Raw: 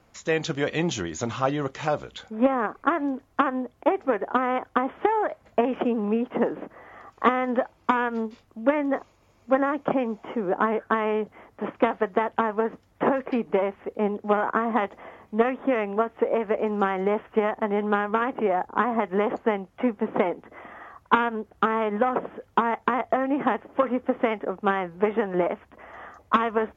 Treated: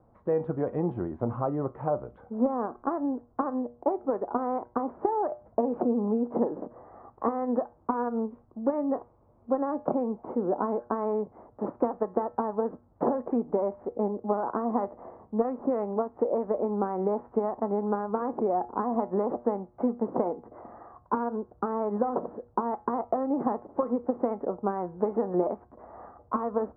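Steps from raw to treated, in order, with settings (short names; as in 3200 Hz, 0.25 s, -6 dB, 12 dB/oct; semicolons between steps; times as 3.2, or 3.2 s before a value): compressor 2:1, threshold -24 dBFS, peak gain reduction 6.5 dB; LPF 1000 Hz 24 dB/oct; resonator 120 Hz, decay 0.35 s, harmonics all, mix 50%; gain +4.5 dB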